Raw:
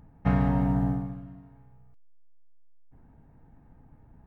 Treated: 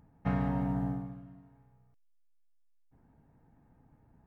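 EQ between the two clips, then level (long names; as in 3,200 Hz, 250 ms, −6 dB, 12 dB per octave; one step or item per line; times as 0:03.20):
low-shelf EQ 61 Hz −10 dB
−5.5 dB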